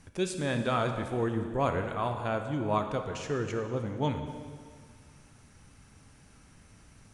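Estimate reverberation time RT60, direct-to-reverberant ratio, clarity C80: 2.0 s, 5.5 dB, 8.0 dB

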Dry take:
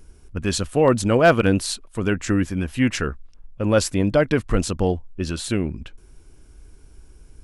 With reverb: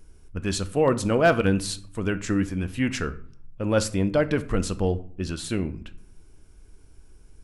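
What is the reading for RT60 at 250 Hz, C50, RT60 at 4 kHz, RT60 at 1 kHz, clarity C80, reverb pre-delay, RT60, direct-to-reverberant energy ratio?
0.90 s, 16.5 dB, 0.35 s, 0.55 s, 20.5 dB, 5 ms, 0.55 s, 11.5 dB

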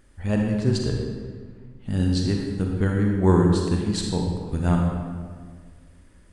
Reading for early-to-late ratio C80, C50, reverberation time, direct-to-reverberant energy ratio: 3.0 dB, 1.0 dB, 1.7 s, 0.5 dB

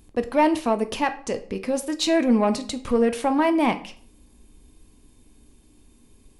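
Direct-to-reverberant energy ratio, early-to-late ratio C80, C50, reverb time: 9.0 dB, 19.5 dB, 14.5 dB, 0.50 s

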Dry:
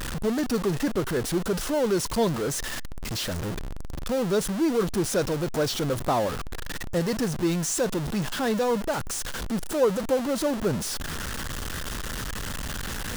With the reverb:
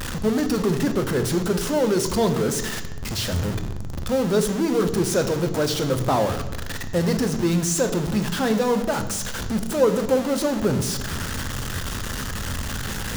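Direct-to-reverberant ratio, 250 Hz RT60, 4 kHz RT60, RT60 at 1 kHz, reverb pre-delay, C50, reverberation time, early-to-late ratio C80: 7.5 dB, 1.4 s, 0.75 s, 1.0 s, 3 ms, 11.0 dB, 1.1 s, 13.0 dB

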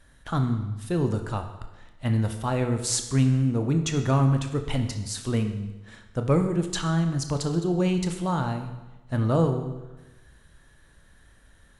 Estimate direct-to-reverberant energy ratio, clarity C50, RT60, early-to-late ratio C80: 6.0 dB, 8.5 dB, 1.1 s, 10.5 dB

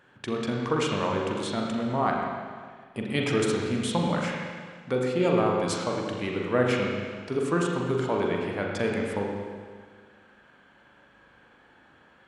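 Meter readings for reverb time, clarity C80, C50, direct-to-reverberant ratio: 1.7 s, 2.0 dB, 1.0 dB, -1.5 dB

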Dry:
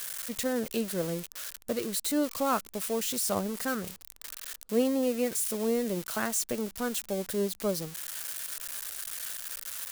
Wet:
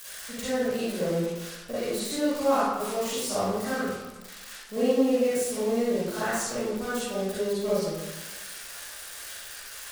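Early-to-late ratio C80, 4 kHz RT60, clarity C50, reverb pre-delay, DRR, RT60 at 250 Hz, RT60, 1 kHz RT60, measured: 0.0 dB, 0.70 s, -4.5 dB, 37 ms, -11.5 dB, 1.1 s, 1.1 s, 1.2 s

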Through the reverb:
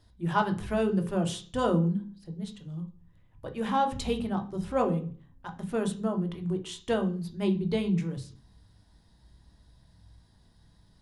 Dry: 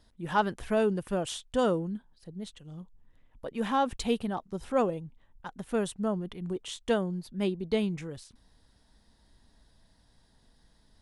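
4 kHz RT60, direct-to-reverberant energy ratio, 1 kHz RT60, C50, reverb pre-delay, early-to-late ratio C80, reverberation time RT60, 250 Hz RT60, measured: 0.40 s, 4.5 dB, 0.40 s, 14.0 dB, 3 ms, 19.0 dB, 0.45 s, 0.60 s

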